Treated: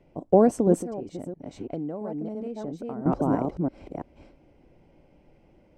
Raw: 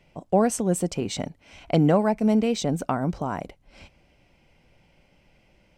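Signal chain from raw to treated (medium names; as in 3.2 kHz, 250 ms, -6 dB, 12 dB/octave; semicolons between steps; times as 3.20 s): chunks repeated in reverse 335 ms, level -3.5 dB; FFT filter 200 Hz 0 dB, 300 Hz +8 dB, 2.9 kHz -12 dB; 0.76–3.06 s: compression 4:1, threshold -34 dBFS, peak gain reduction 19.5 dB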